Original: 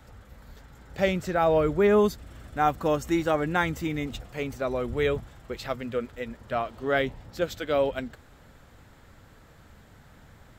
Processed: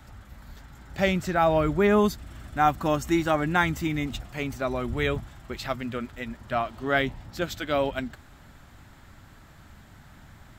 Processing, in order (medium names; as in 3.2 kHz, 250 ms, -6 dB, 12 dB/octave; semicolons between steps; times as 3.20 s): peaking EQ 480 Hz -12 dB 0.36 oct; trim +3 dB